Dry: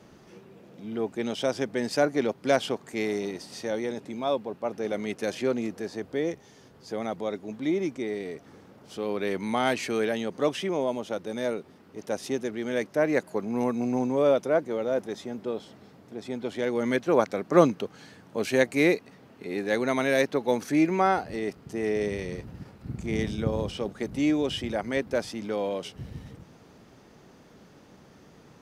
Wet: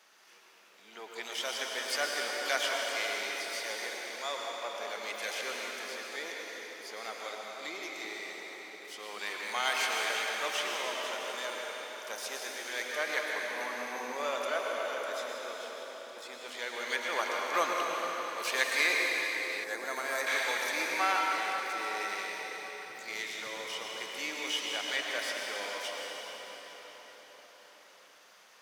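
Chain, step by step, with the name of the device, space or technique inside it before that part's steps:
high-pass filter 1,300 Hz 12 dB per octave
shimmer-style reverb (pitch-shifted copies added +12 semitones −11 dB; convolution reverb RT60 5.5 s, pre-delay 96 ms, DRR −2 dB)
0:19.64–0:20.27: parametric band 3,100 Hz −12.5 dB 1.4 octaves

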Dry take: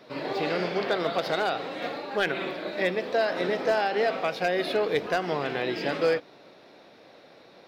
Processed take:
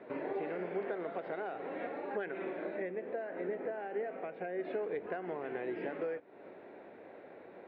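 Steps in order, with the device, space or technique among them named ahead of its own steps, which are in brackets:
bass amplifier (downward compressor 5 to 1, threshold −37 dBFS, peak gain reduction 15.5 dB; loudspeaker in its box 69–2,100 Hz, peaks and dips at 140 Hz −9 dB, 390 Hz +5 dB, 1,200 Hz −6 dB)
0:02.77–0:04.65: octave-band graphic EQ 1,000/4,000/8,000 Hz −4/−5/−9 dB

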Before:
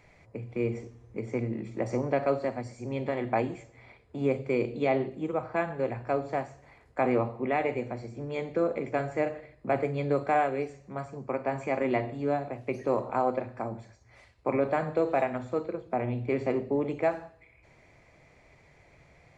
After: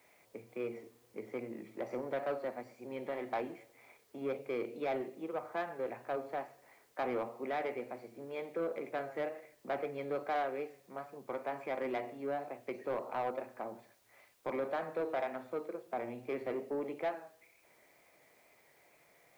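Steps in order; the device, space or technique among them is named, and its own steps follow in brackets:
tape answering machine (band-pass filter 320–3,300 Hz; soft clipping −23 dBFS, distortion −14 dB; tape wow and flutter; white noise bed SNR 32 dB)
level −5.5 dB

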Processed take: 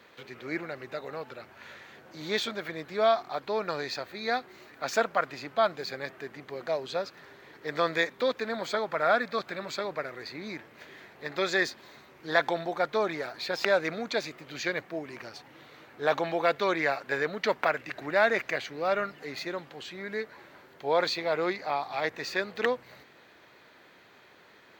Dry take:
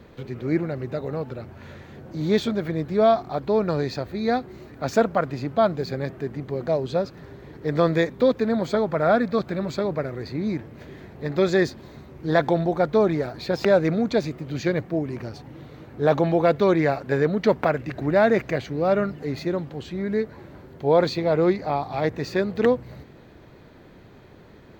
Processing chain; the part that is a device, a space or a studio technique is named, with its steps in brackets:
filter by subtraction (in parallel: low-pass filter 1,900 Hz 12 dB per octave + polarity inversion)

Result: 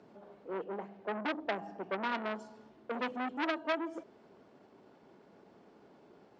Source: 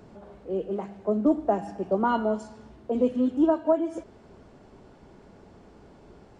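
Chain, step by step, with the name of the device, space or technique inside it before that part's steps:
public-address speaker with an overloaded transformer (saturating transformer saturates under 1,800 Hz; band-pass filter 210–5,400 Hz)
0:00.64–0:02.12: high-frequency loss of the air 78 metres
level −6 dB

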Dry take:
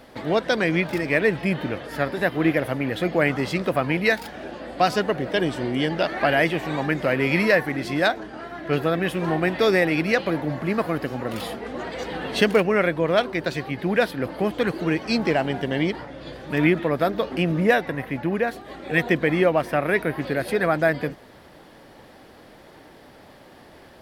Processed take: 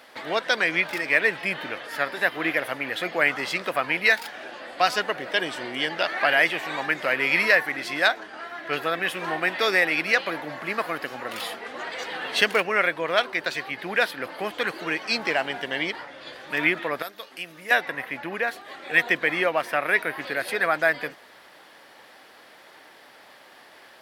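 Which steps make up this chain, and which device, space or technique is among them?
filter by subtraction (in parallel: low-pass filter 1,700 Hz 12 dB per octave + polarity inversion)
0:17.02–0:17.71: on the sum: first-order pre-emphasis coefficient 0.8
level +1.5 dB

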